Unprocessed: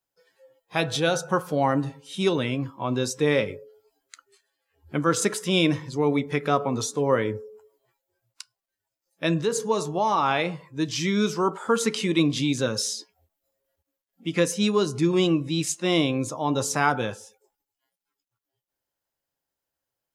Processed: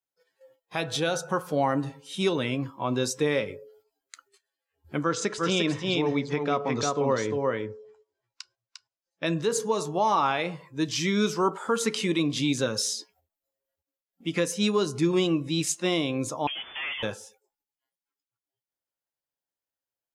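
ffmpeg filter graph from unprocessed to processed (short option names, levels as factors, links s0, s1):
-filter_complex "[0:a]asettb=1/sr,asplit=3[s0][s1][s2];[s0]atrim=end=5.034[s3];[s1]atrim=start=5.03:end=9.26,asetpts=PTS-STARTPTS,afade=t=in:d=0.004:c=qsin,afade=t=out:st=4.226:d=0.004:c=qsin,lowpass=f=6700:w=0.5412,lowpass=f=6700:w=1.3066,aecho=1:1:351:0.596,atrim=end_sample=186543[s4];[s2]atrim=start=9.256[s5];[s3][s4]acrossfade=d=0.004:c1=hsin:c2=qsin[s6];[s6][s5]acrossfade=d=0.004:c1=qsin:c2=hsin,asettb=1/sr,asplit=3[s7][s8][s9];[s7]atrim=end=16.474[s10];[s8]atrim=start=16.47:end=17.03,asetpts=PTS-STARTPTS,afade=t=in:d=0.004:c=qsin,afade=t=out:st=0.556:d=0.004:c=qsin,aemphasis=mode=production:type=riaa,aeval=exprs='(tanh(31.6*val(0)+0.15)-tanh(0.15))/31.6':c=same,lowpass=f=3000:t=q:w=0.5098,lowpass=f=3000:t=q:w=0.6013,lowpass=f=3000:t=q:w=0.9,lowpass=f=3000:t=q:w=2.563,afreqshift=-3500[s11];[s9]atrim=start=17.026[s12];[s10][s11]acrossfade=d=0.004:c1=hsin:c2=qsin[s13];[s13][s12]acrossfade=d=0.004:c1=qsin:c2=hsin,alimiter=limit=0.224:level=0:latency=1:release=265,agate=range=0.355:threshold=0.00112:ratio=16:detection=peak,lowshelf=f=190:g=-4"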